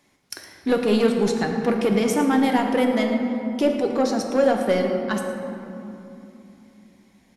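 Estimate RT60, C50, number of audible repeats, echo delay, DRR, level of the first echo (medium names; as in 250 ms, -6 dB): 2.9 s, 4.0 dB, 1, 112 ms, 2.0 dB, -14.5 dB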